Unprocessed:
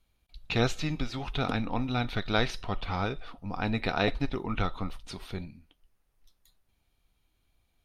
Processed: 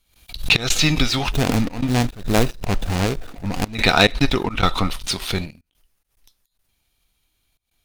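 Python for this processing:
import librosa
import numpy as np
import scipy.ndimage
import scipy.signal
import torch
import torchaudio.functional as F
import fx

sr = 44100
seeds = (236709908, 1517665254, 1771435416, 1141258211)

y = fx.median_filter(x, sr, points=41, at=(1.32, 3.75))
y = fx.high_shelf(y, sr, hz=2200.0, db=11.0)
y = fx.leveller(y, sr, passes=2)
y = fx.step_gate(y, sr, bpm=107, pattern='x.xx.xxxxxxx.x', floor_db=-24.0, edge_ms=4.5)
y = fx.pre_swell(y, sr, db_per_s=130.0)
y = F.gain(torch.from_numpy(y), 4.5).numpy()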